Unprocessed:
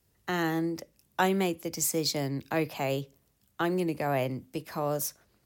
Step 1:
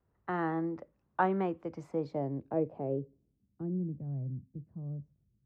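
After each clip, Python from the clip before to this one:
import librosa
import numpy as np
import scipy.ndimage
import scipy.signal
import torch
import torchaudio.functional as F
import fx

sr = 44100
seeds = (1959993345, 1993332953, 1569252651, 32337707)

y = fx.filter_sweep_lowpass(x, sr, from_hz=1200.0, to_hz=150.0, start_s=1.7, end_s=4.11, q=1.6)
y = F.gain(torch.from_numpy(y), -4.5).numpy()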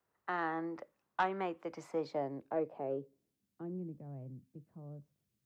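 y = fx.highpass(x, sr, hz=1100.0, slope=6)
y = fx.rider(y, sr, range_db=3, speed_s=0.5)
y = 10.0 ** (-26.0 / 20.0) * np.tanh(y / 10.0 ** (-26.0 / 20.0))
y = F.gain(torch.from_numpy(y), 4.5).numpy()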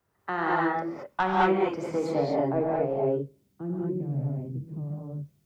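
y = fx.low_shelf(x, sr, hz=160.0, db=12.0)
y = fx.rev_gated(y, sr, seeds[0], gate_ms=250, shape='rising', drr_db=-4.5)
y = F.gain(torch.from_numpy(y), 5.0).numpy()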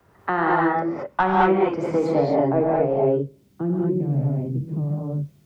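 y = fx.high_shelf(x, sr, hz=3600.0, db=-10.0)
y = fx.band_squash(y, sr, depth_pct=40)
y = F.gain(torch.from_numpy(y), 6.5).numpy()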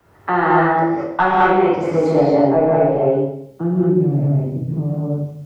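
y = fx.rev_plate(x, sr, seeds[1], rt60_s=0.71, hf_ratio=1.0, predelay_ms=0, drr_db=-1.0)
y = F.gain(torch.from_numpy(y), 2.0).numpy()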